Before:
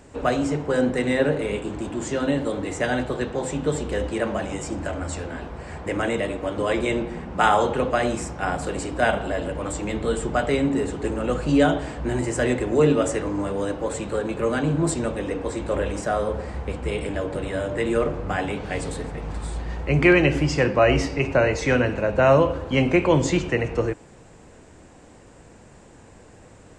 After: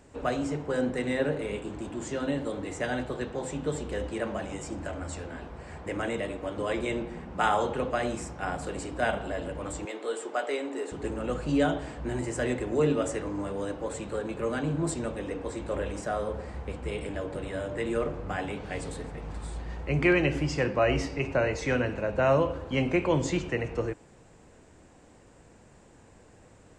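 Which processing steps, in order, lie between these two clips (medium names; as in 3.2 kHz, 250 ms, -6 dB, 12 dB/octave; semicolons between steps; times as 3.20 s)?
9.85–10.92 s: high-pass 340 Hz 24 dB/octave; trim -7 dB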